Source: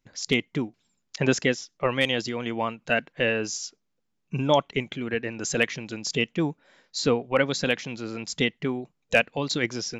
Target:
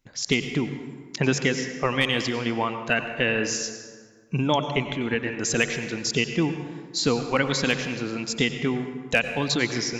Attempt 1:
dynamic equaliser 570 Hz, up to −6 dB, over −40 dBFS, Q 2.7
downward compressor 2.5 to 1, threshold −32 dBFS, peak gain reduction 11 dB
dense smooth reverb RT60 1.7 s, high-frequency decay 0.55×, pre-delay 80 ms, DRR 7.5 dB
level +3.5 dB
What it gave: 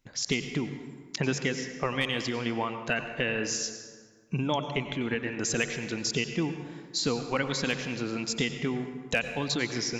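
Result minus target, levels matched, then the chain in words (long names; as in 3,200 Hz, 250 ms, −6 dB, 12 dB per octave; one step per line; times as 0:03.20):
downward compressor: peak gain reduction +6.5 dB
dynamic equaliser 570 Hz, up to −6 dB, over −40 dBFS, Q 2.7
downward compressor 2.5 to 1, threshold −21.5 dBFS, peak gain reduction 5 dB
dense smooth reverb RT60 1.7 s, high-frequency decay 0.55×, pre-delay 80 ms, DRR 7.5 dB
level +3.5 dB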